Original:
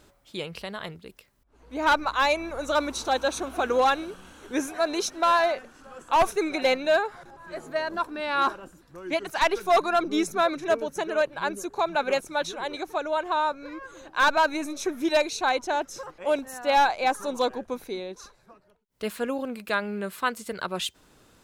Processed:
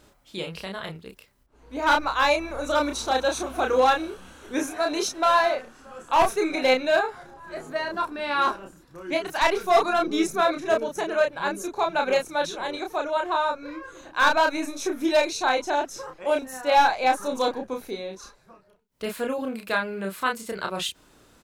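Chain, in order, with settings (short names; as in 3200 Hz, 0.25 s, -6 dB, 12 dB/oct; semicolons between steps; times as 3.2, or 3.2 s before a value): doubler 31 ms -3.5 dB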